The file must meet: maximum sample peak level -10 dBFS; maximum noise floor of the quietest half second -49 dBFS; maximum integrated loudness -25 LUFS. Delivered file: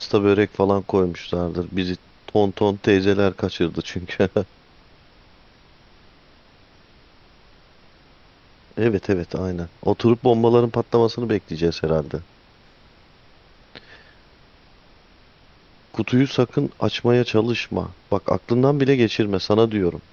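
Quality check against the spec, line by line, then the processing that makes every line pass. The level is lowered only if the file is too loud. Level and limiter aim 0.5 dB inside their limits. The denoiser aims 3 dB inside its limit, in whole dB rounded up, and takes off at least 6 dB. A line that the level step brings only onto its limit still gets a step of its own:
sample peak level -3.0 dBFS: fail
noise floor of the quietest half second -52 dBFS: OK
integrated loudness -21.0 LUFS: fail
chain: gain -4.5 dB; limiter -10.5 dBFS

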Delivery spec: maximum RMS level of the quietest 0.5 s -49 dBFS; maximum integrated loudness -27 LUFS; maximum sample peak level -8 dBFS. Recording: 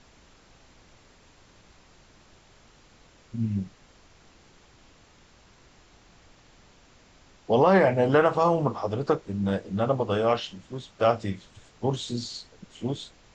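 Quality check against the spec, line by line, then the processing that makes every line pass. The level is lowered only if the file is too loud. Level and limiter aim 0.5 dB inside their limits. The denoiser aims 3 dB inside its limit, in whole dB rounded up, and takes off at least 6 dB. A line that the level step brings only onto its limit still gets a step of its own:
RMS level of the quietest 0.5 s -56 dBFS: OK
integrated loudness -25.5 LUFS: fail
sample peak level -9.0 dBFS: OK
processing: gain -2 dB

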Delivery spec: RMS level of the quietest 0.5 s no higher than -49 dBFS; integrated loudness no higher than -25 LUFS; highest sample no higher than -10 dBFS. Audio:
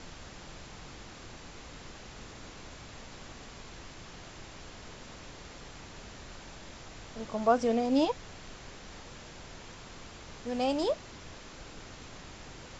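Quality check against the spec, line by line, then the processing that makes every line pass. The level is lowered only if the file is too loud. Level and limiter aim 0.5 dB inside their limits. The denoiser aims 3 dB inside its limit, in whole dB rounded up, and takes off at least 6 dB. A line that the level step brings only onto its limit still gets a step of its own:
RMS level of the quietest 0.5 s -47 dBFS: fail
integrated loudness -35.5 LUFS: OK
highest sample -13.0 dBFS: OK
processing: denoiser 6 dB, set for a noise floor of -47 dBFS

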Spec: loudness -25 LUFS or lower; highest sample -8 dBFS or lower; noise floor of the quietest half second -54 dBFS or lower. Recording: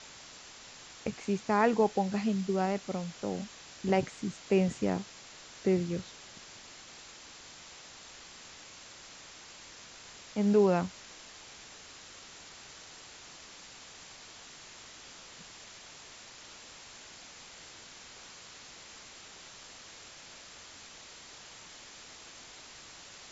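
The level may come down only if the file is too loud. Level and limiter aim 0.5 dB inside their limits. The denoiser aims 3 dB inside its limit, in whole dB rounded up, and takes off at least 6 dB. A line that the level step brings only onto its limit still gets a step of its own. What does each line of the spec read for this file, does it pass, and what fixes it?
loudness -31.0 LUFS: OK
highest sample -13.5 dBFS: OK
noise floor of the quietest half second -51 dBFS: fail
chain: denoiser 6 dB, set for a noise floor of -51 dBFS

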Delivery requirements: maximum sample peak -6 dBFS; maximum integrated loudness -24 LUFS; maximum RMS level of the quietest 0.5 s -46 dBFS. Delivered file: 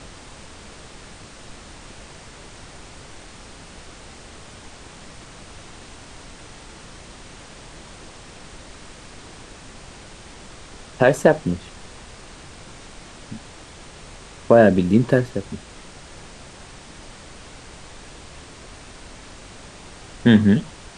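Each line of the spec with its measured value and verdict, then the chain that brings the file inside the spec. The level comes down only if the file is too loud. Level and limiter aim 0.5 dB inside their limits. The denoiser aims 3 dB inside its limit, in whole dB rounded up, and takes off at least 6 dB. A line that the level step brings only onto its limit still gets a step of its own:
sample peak -2.0 dBFS: fail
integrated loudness -17.5 LUFS: fail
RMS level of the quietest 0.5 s -42 dBFS: fail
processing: gain -7 dB

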